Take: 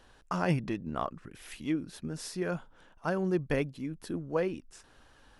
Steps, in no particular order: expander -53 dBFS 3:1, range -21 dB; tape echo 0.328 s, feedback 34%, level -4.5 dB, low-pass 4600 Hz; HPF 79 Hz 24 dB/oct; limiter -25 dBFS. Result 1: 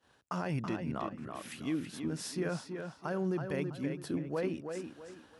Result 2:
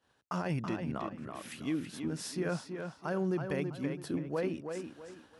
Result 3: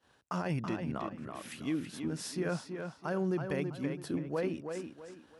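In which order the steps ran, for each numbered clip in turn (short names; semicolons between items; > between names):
limiter > tape echo > expander > HPF; HPF > limiter > tape echo > expander; expander > HPF > limiter > tape echo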